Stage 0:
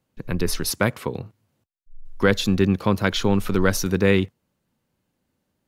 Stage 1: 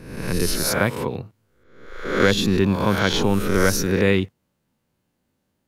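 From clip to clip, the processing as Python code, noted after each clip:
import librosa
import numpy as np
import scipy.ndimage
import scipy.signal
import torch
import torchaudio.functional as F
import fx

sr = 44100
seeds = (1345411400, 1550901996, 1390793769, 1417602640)

y = fx.spec_swells(x, sr, rise_s=0.79)
y = y * 10.0 ** (-1.0 / 20.0)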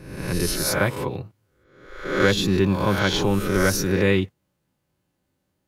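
y = fx.notch_comb(x, sr, f0_hz=230.0)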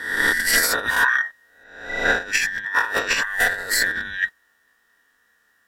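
y = fx.band_invert(x, sr, width_hz=2000)
y = fx.over_compress(y, sr, threshold_db=-26.0, ratio=-0.5)
y = y * 10.0 ** (5.5 / 20.0)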